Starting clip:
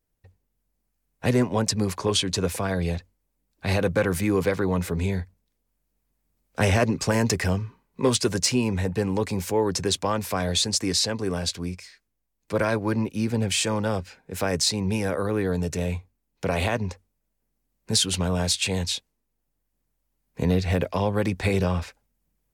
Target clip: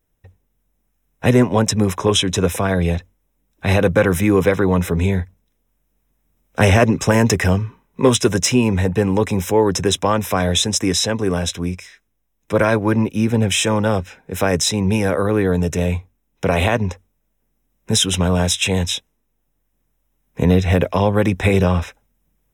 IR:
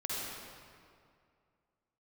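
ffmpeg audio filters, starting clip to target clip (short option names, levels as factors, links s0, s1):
-af "asuperstop=centerf=4500:order=12:qfactor=4.7,equalizer=f=7800:t=o:w=1.5:g=-3,volume=2.51"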